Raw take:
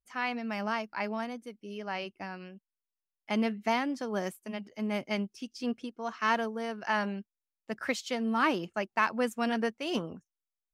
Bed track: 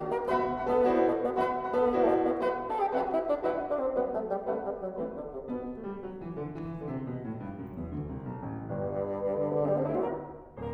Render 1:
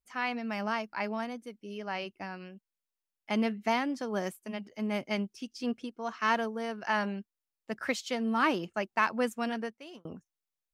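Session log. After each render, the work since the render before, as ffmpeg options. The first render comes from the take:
-filter_complex "[0:a]asplit=2[a][b];[a]atrim=end=10.05,asetpts=PTS-STARTPTS,afade=t=out:st=9.24:d=0.81[c];[b]atrim=start=10.05,asetpts=PTS-STARTPTS,afade=t=in:d=0.004:c=hsin[d];[c][d]concat=n=2:v=0:a=1"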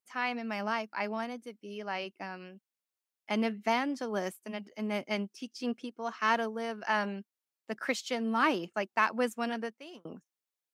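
-af "highpass=190"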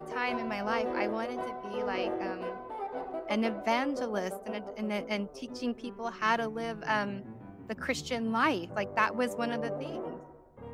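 -filter_complex "[1:a]volume=-8.5dB[a];[0:a][a]amix=inputs=2:normalize=0"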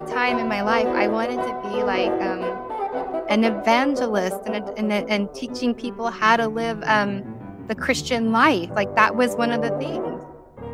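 -af "volume=11dB"

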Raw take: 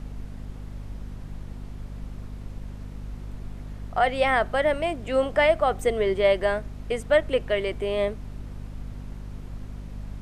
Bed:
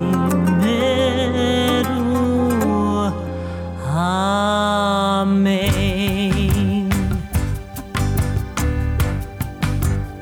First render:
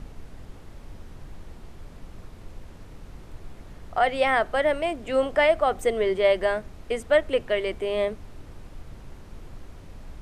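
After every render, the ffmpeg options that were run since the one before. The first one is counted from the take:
-af "bandreject=f=50:t=h:w=6,bandreject=f=100:t=h:w=6,bandreject=f=150:t=h:w=6,bandreject=f=200:t=h:w=6,bandreject=f=250:t=h:w=6"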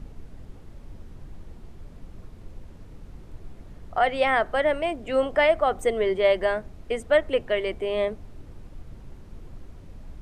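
-af "afftdn=nr=6:nf=-46"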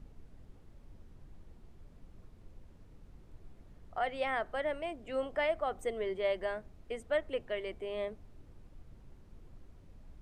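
-af "volume=-12dB"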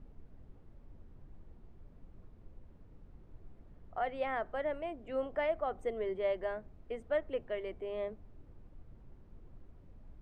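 -af "lowpass=f=1.4k:p=1,bandreject=f=50:t=h:w=6,bandreject=f=100:t=h:w=6,bandreject=f=150:t=h:w=6,bandreject=f=200:t=h:w=6"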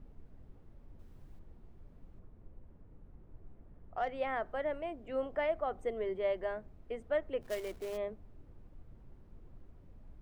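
-filter_complex "[0:a]asettb=1/sr,asplit=3[a][b][c];[a]atrim=end=0.994[d];[b]atrim=start=0.99:end=1.39,asetpts=PTS-STARTPTS,afade=t=in:d=0.004:c=qsin,afade=t=out:st=0.396:d=0.004:c=qsin,highshelf=f=3.4k:g=12[e];[c]atrim=start=1.386[f];[d][e]acrossfade=d=0.004:c1=hsin:c2=qsin[g];[g][f]acrossfade=d=0.004:c1=qsin:c2=hsin,asettb=1/sr,asplit=3[h][i][j];[h]atrim=end=2.194[k];[i]atrim=start=2.19:end=4.09,asetpts=PTS-STARTPTS,afade=t=in:d=0.004:c=qsin,afade=t=out:st=1.896:d=0.004:c=qsin,adynamicsmooth=sensitivity=7.5:basefreq=2.9k[l];[j]atrim=start=4.086[m];[k][l]acrossfade=d=0.004:c1=hsin:c2=qsin[n];[n][m]acrossfade=d=0.004:c1=qsin:c2=hsin,asplit=3[o][p][q];[o]afade=t=out:st=7.41:d=0.02[r];[p]acrusher=bits=3:mode=log:mix=0:aa=0.000001,afade=t=in:st=7.41:d=0.02,afade=t=out:st=7.96:d=0.02[s];[q]afade=t=in:st=7.96:d=0.02[t];[r][s][t]amix=inputs=3:normalize=0"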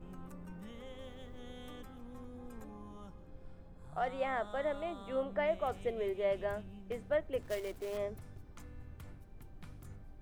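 -filter_complex "[1:a]volume=-33dB[a];[0:a][a]amix=inputs=2:normalize=0"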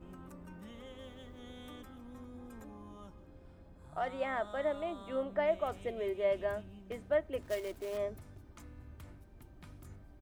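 -af "highpass=41,aecho=1:1:3.2:0.31"

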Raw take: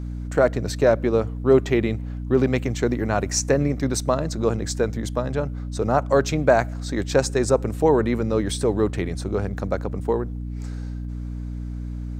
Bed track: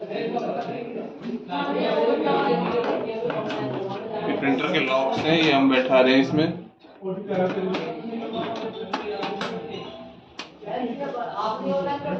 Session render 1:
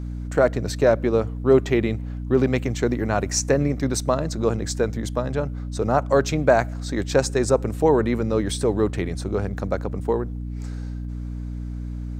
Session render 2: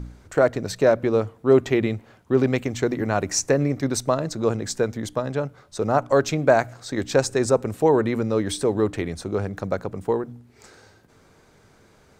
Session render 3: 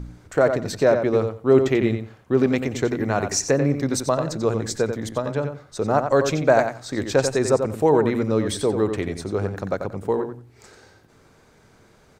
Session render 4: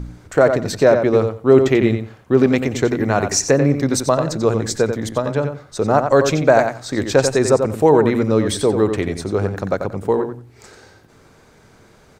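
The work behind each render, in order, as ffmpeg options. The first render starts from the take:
-af anull
-af "bandreject=f=60:t=h:w=4,bandreject=f=120:t=h:w=4,bandreject=f=180:t=h:w=4,bandreject=f=240:t=h:w=4,bandreject=f=300:t=h:w=4"
-filter_complex "[0:a]asplit=2[a][b];[b]adelay=90,lowpass=f=4.5k:p=1,volume=-7dB,asplit=2[c][d];[d]adelay=90,lowpass=f=4.5k:p=1,volume=0.18,asplit=2[e][f];[f]adelay=90,lowpass=f=4.5k:p=1,volume=0.18[g];[a][c][e][g]amix=inputs=4:normalize=0"
-af "volume=5dB,alimiter=limit=-1dB:level=0:latency=1"

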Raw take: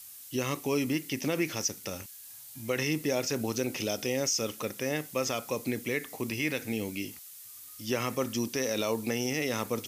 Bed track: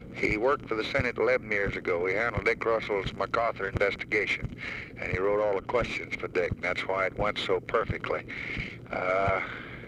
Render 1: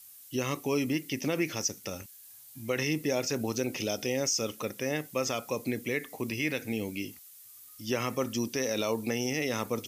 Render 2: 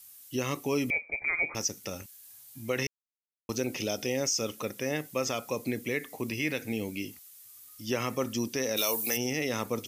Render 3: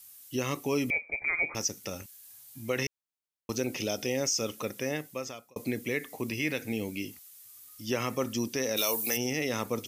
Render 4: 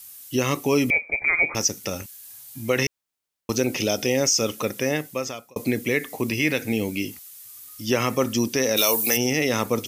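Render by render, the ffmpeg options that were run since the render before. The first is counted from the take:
-af "afftdn=nr=6:nf=-48"
-filter_complex "[0:a]asettb=1/sr,asplit=3[a][b][c];[a]atrim=end=0.904[d];[b]atrim=start=0.9:end=1.55,asetpts=PTS-STARTPTS,afade=t=in:d=0.004:c=qsin,afade=t=out:st=0.646:d=0.004:c=qsin,lowpass=f=2.2k:t=q:w=0.5098,lowpass=f=2.2k:t=q:w=0.6013,lowpass=f=2.2k:t=q:w=0.9,lowpass=f=2.2k:t=q:w=2.563,afreqshift=-2600[e];[c]atrim=start=1.546[f];[d][e]acrossfade=d=0.004:c1=hsin:c2=qsin[g];[g][f]acrossfade=d=0.004:c1=qsin:c2=hsin,asplit=3[h][i][j];[h]afade=t=out:st=8.76:d=0.02[k];[i]aemphasis=mode=production:type=riaa,afade=t=in:st=8.76:d=0.02,afade=t=out:st=9.16:d=0.02[l];[j]afade=t=in:st=9.16:d=0.02[m];[k][l][m]amix=inputs=3:normalize=0,asplit=3[n][o][p];[n]atrim=end=2.87,asetpts=PTS-STARTPTS,afade=t=out:st=2.866:d=0.004:c=hsin[q];[o]atrim=start=2.87:end=3.49,asetpts=PTS-STARTPTS,volume=0[r];[p]atrim=start=3.49,asetpts=PTS-STARTPTS,afade=t=in:d=0.004:c=hsin[s];[q][r][s]concat=n=3:v=0:a=1"
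-filter_complex "[0:a]asplit=2[a][b];[a]atrim=end=5.56,asetpts=PTS-STARTPTS,afade=t=out:st=4.83:d=0.73[c];[b]atrim=start=5.56,asetpts=PTS-STARTPTS,afade=t=in:d=0.004:c=hsin[d];[c][d]concat=n=2:v=0:a=1"
-af "volume=8.5dB"

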